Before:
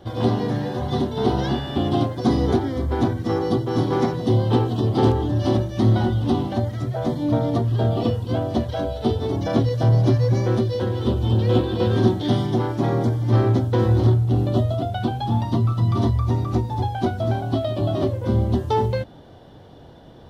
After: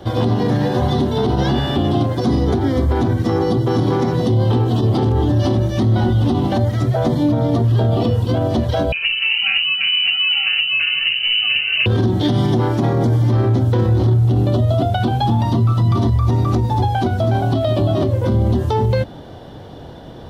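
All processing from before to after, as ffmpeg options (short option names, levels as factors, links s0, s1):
-filter_complex "[0:a]asettb=1/sr,asplit=3[s0][s1][s2];[s0]atrim=end=8.924[s3];[s1]atrim=start=8.92:end=11.86,asetpts=PTS-STARTPTS,afade=t=in:d=0.004:c=qsin,afade=t=out:st=2.936:d=0.004:c=qsin,highpass=f=120:w=0.5412,highpass=f=120:w=1.3066,bandreject=f=60:t=h:w=6,bandreject=f=120:t=h:w=6,bandreject=f=180:t=h:w=6,bandreject=f=240:t=h:w=6,bandreject=f=300:t=h:w=6,bandreject=f=360:t=h:w=6,bandreject=f=420:t=h:w=6,lowpass=f=2600:t=q:w=0.5098,lowpass=f=2600:t=q:w=0.6013,lowpass=f=2600:t=q:w=0.9,lowpass=f=2600:t=q:w=2.563,afreqshift=-3100[s4];[s2]atrim=start=11.856[s5];[s3][s4]acrossfade=d=0.004:c1=hsin:c2=qsin[s6];[s6][s5]acrossfade=d=0.004:c1=qsin:c2=hsin,acrossover=split=230[s7][s8];[s8]acompressor=threshold=0.0708:ratio=6[s9];[s7][s9]amix=inputs=2:normalize=0,alimiter=level_in=7.08:limit=0.891:release=50:level=0:latency=1,volume=0.422"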